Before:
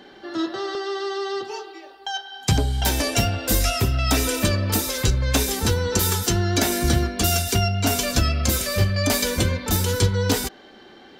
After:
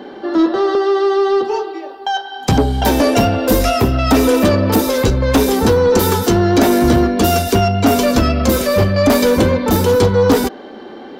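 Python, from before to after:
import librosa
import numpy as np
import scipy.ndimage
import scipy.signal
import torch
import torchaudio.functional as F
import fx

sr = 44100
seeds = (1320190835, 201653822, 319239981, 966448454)

y = fx.graphic_eq(x, sr, hz=(250, 500, 1000, 8000), db=(10, 9, 7, -5))
y = 10.0 ** (-10.0 / 20.0) * np.tanh(y / 10.0 ** (-10.0 / 20.0))
y = y * 10.0 ** (4.5 / 20.0)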